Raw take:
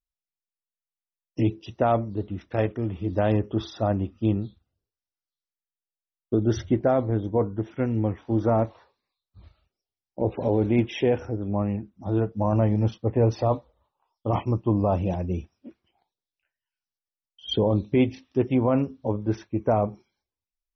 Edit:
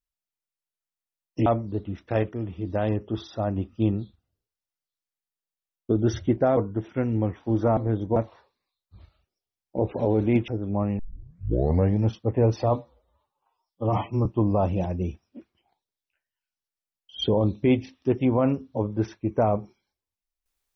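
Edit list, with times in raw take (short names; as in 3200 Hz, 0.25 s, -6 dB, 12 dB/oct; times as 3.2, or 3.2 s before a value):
1.46–1.89 cut
2.76–3.99 gain -3 dB
7–7.39 move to 8.59
10.91–11.27 cut
11.78 tape start 0.97 s
13.56–14.55 stretch 1.5×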